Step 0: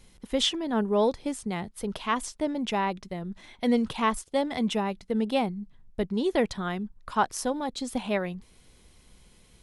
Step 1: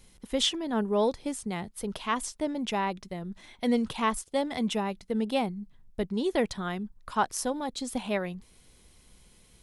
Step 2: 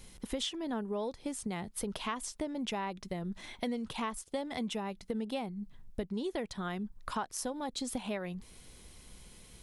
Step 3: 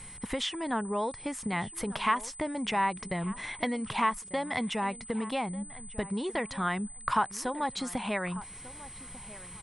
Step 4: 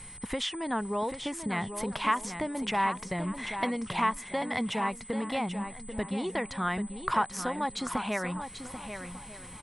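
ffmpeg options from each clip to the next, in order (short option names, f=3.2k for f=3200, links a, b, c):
-af "highshelf=f=6.8k:g=5.5,volume=-2dB"
-af "acompressor=threshold=-38dB:ratio=6,volume=4dB"
-filter_complex "[0:a]equalizer=f=125:t=o:w=1:g=10,equalizer=f=1k:t=o:w=1:g=10,equalizer=f=2k:t=o:w=1:g=10,asplit=2[a][b];[b]adelay=1194,lowpass=f=2.5k:p=1,volume=-17.5dB,asplit=2[c][d];[d]adelay=1194,lowpass=f=2.5k:p=1,volume=0.2[e];[a][c][e]amix=inputs=3:normalize=0,aeval=exprs='val(0)+0.00562*sin(2*PI*8100*n/s)':c=same"
-af "aecho=1:1:788|1576|2364:0.355|0.0639|0.0115"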